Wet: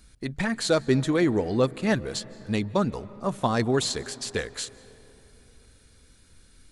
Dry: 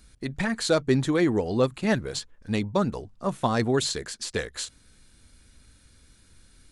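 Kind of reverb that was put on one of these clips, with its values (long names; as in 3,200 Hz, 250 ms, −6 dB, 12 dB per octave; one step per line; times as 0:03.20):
comb and all-pass reverb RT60 3.7 s, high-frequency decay 0.4×, pre-delay 120 ms, DRR 19 dB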